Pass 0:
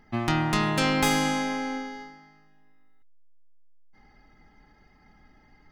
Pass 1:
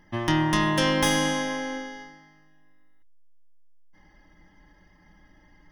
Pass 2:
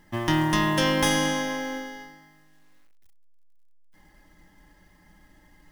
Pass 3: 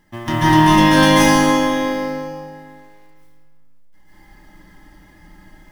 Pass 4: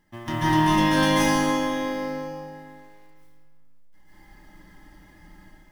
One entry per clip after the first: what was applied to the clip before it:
rippled EQ curve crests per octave 1.2, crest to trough 11 dB
companded quantiser 6-bit
reverberation RT60 2.0 s, pre-delay 130 ms, DRR -11 dB; trim -1.5 dB
level rider gain up to 4 dB; trim -8 dB

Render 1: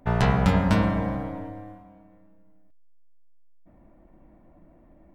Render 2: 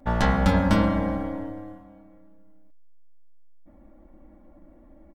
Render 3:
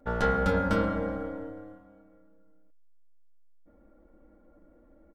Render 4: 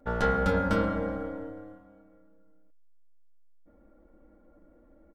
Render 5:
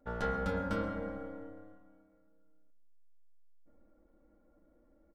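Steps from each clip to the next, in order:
peaking EQ 2.6 kHz -4.5 dB 0.31 oct; comb 3.6 ms, depth 72%
small resonant body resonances 450/1400 Hz, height 16 dB, ringing for 55 ms; trim -8.5 dB
no audible change
reverberation RT60 0.65 s, pre-delay 90 ms, DRR 17 dB; trim -8.5 dB

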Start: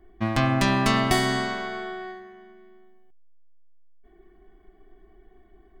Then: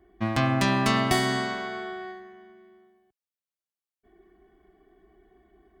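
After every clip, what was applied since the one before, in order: high-pass 57 Hz 12 dB/octave; trim -1.5 dB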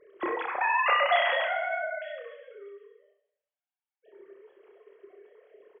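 formants replaced by sine waves; on a send: reverse bouncing-ball echo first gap 30 ms, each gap 1.1×, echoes 5; on the sum: gated-style reverb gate 440 ms falling, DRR 12 dB; trim -4 dB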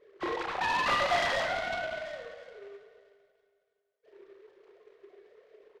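in parallel at -4.5 dB: hard clipper -25 dBFS, distortion -9 dB; on the sum: echo whose repeats swap between lows and highs 162 ms, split 1.1 kHz, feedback 64%, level -12.5 dB; delay time shaken by noise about 1.5 kHz, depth 0.041 ms; trim -6.5 dB

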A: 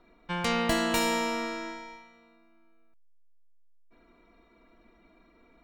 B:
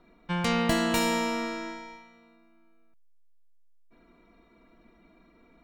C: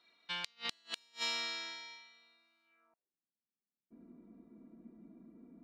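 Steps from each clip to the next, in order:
peaking EQ 160 Hz +6 dB 1.2 oct
band-pass sweep 4.1 kHz -> 230 Hz, 2.63–3.17 s; inverted gate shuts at -30 dBFS, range -37 dB; trim +7.5 dB

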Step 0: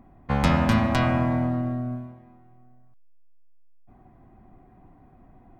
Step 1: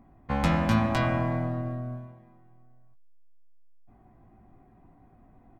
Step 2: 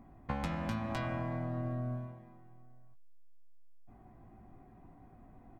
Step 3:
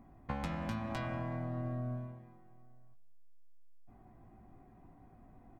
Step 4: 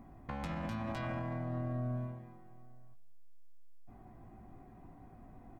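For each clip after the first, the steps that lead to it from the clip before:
doubling 18 ms -7 dB; trim -4.5 dB
compression 16:1, threshold -32 dBFS, peak gain reduction 14.5 dB
filtered feedback delay 186 ms, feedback 41%, low-pass 4.7 kHz, level -22.5 dB; trim -2 dB
peak limiter -34 dBFS, peak gain reduction 9.5 dB; trim +4 dB

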